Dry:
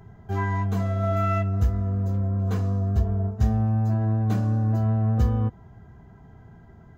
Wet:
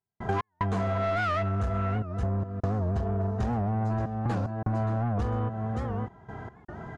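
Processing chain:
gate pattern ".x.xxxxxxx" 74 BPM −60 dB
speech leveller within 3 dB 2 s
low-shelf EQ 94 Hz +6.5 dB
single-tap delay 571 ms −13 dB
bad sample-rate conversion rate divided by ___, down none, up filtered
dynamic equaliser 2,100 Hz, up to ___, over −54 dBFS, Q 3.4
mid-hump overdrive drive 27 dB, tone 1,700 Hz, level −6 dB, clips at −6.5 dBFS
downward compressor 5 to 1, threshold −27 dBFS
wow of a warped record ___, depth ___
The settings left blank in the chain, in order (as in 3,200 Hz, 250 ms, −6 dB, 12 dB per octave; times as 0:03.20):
2×, −4 dB, 78 rpm, 160 cents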